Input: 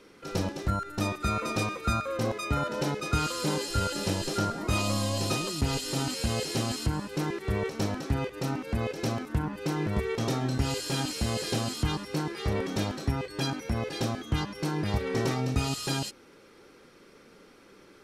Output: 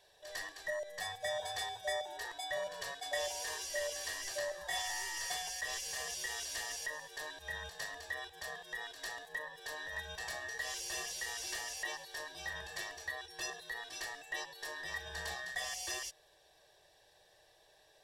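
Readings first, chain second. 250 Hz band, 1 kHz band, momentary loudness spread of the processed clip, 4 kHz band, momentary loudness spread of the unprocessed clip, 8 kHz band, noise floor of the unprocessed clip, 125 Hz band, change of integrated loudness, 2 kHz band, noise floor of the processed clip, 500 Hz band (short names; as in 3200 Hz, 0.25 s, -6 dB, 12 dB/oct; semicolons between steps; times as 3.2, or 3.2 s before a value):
-32.0 dB, -10.5 dB, 6 LU, -6.5 dB, 4 LU, -3.5 dB, -55 dBFS, -31.0 dB, -9.5 dB, -1.5 dB, -67 dBFS, -11.0 dB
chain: band inversion scrambler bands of 2000 Hz; fixed phaser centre 590 Hz, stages 4; gain -5 dB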